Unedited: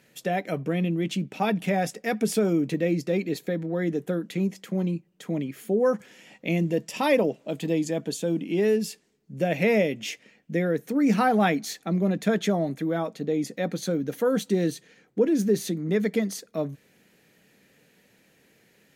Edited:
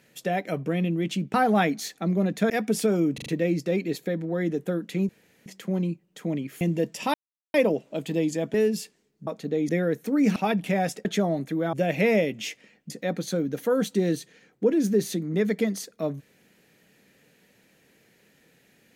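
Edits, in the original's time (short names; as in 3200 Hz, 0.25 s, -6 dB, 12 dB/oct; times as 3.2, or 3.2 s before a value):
1.34–2.03 swap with 11.19–12.35
2.67 stutter 0.04 s, 4 plays
4.5 insert room tone 0.37 s
5.65–6.55 cut
7.08 insert silence 0.40 s
8.08–8.62 cut
9.35–10.52 swap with 13.03–13.45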